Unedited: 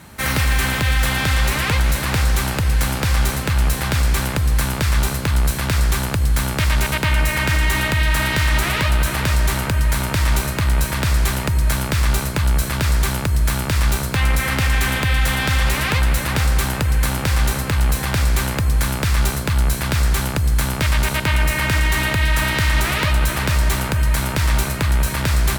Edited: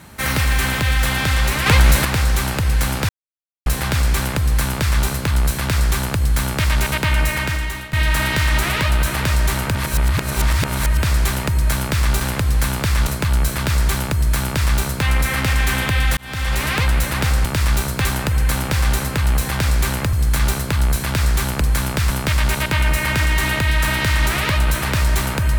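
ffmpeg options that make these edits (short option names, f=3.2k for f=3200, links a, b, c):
-filter_complex "[0:a]asplit=17[a][b][c][d][e][f][g][h][i][j][k][l][m][n][o][p][q];[a]atrim=end=1.662[r];[b]atrim=start=1.658:end=2.052,asetpts=PTS-STARTPTS,volume=5.5dB[s];[c]atrim=start=2.048:end=3.09,asetpts=PTS-STARTPTS,afade=t=out:st=1.038:d=0.004:c=hsin[t];[d]atrim=start=3.09:end=3.66,asetpts=PTS-STARTPTS,volume=0[u];[e]atrim=start=3.66:end=7.93,asetpts=PTS-STARTPTS,afade=t=in:d=0.004:c=hsin,afade=t=out:st=3.59:d=0.68:silence=0.125893[v];[f]atrim=start=7.93:end=9.752,asetpts=PTS-STARTPTS,afade=t=in:d=0.004:c=hsin:silence=0.125893[w];[g]atrim=start=9.748:end=11.032,asetpts=PTS-STARTPTS,areverse[x];[h]atrim=start=11.028:end=12.212[y];[i]atrim=start=4.178:end=5.042[z];[j]atrim=start=12.208:end=15.31,asetpts=PTS-STARTPTS,afade=t=out:st=3.098:d=0.004:c=hsin[aa];[k]atrim=start=15.31:end=16.592,asetpts=PTS-STARTPTS,afade=t=in:d=0.64:c=qsin[ab];[l]atrim=start=13.598:end=14.202[ac];[m]atrim=start=16.588:end=18.672[ad];[n]atrim=start=20.378:end=20.642[ae];[o]atrim=start=19.158:end=20.382[af];[p]atrim=start=18.668:end=19.162[ag];[q]atrim=start=20.638[ah];[r][s]acrossfade=d=0.004:c1=hsin:c2=hsin[ai];[t][u][v][w]concat=n=4:v=0:a=1[aj];[ai][aj]acrossfade=d=0.004:c1=hsin:c2=hsin[ak];[ak][x]acrossfade=d=0.004:c1=hsin:c2=hsin[al];[al][y]acrossfade=d=0.004:c1=hsin:c2=hsin[am];[am][z]acrossfade=d=0.004:c1=hsin:c2=hsin[an];[aa][ab]concat=n=2:v=0:a=1[ao];[an][ao]acrossfade=d=0.004:c1=hsin:c2=hsin[ap];[ap][ac]acrossfade=d=0.004:c1=hsin:c2=hsin[aq];[aq][ad]acrossfade=d=0.004:c1=hsin:c2=hsin[ar];[ar][ae]acrossfade=d=0.004:c1=hsin:c2=hsin[as];[as][af]acrossfade=d=0.004:c1=hsin:c2=hsin[at];[at][ag]acrossfade=d=0.004:c1=hsin:c2=hsin[au];[au][ah]acrossfade=d=0.004:c1=hsin:c2=hsin"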